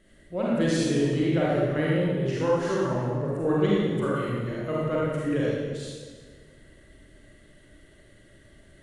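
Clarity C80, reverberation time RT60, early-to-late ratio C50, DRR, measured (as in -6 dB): -1.0 dB, 1.6 s, -4.0 dB, -6.5 dB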